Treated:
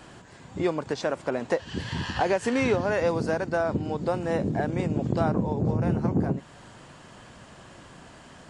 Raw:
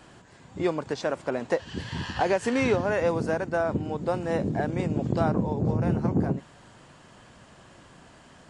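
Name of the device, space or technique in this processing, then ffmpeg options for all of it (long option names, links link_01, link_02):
parallel compression: -filter_complex "[0:a]asplit=2[link_01][link_02];[link_02]acompressor=threshold=-33dB:ratio=6,volume=-0.5dB[link_03];[link_01][link_03]amix=inputs=2:normalize=0,asettb=1/sr,asplit=3[link_04][link_05][link_06];[link_04]atrim=end=2.814[link_07];[link_05]atrim=start=2.81:end=4.08,asetpts=PTS-STARTPTS,afade=type=in:duration=0.004:curve=qsin,afade=type=out:start_time=1.266:duration=0.004:curve=qsin,equalizer=frequency=4600:width_type=o:width=0.51:gain=5.5[link_08];[link_06]atrim=start=4.076[link_09];[link_07][link_08]acrossfade=duration=0.004:curve1=hsin:curve2=qsin[link_10];[link_10][link_09]acrossfade=duration=0.004:curve1=qsin:curve2=hsin,volume=-2dB"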